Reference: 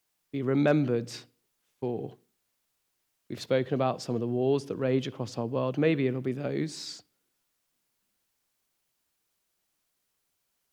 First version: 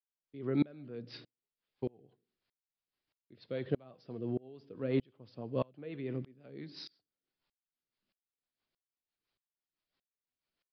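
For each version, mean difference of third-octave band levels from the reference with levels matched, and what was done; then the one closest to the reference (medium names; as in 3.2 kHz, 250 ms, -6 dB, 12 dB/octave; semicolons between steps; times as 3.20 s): 8.0 dB: flange 0.54 Hz, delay 0.9 ms, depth 3.6 ms, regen +85%; rotary cabinet horn 6 Hz; resampled via 11.025 kHz; sawtooth tremolo in dB swelling 1.6 Hz, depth 31 dB; trim +5 dB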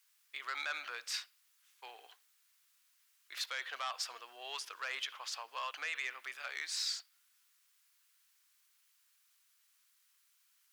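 19.5 dB: high-pass 1.2 kHz 24 dB/octave; dynamic bell 7 kHz, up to -3 dB, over -55 dBFS, Q 0.8; peak limiter -31.5 dBFS, peak gain reduction 10 dB; transformer saturation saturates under 2.2 kHz; trim +6 dB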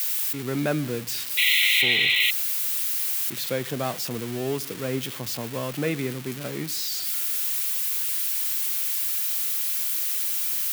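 11.5 dB: zero-crossing glitches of -19.5 dBFS; tilt EQ +3 dB/octave; painted sound noise, 1.37–2.31 s, 1.9–4.2 kHz -17 dBFS; tone controls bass +9 dB, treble -15 dB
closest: first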